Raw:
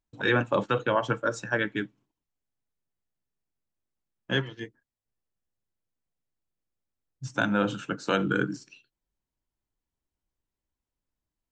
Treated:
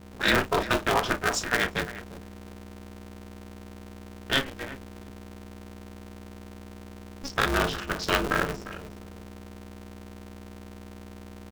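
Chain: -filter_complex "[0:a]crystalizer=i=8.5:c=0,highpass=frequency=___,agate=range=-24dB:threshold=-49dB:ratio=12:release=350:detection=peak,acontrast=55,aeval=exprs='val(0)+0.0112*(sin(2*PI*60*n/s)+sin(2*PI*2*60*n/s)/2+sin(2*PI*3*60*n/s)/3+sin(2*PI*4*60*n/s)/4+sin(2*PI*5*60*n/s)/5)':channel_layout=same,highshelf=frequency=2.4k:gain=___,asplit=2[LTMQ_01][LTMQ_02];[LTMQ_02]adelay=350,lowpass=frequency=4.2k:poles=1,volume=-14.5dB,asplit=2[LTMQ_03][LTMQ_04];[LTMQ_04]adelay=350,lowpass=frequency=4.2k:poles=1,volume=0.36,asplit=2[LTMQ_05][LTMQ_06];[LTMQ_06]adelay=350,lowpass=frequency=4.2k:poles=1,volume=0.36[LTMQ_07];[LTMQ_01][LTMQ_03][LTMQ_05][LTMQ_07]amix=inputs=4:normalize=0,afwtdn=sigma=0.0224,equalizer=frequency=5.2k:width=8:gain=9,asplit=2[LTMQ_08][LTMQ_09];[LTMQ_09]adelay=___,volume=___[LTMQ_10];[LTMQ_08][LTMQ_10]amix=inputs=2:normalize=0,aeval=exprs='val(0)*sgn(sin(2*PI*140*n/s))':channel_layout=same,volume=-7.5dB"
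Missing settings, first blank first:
110, -7, 33, -11dB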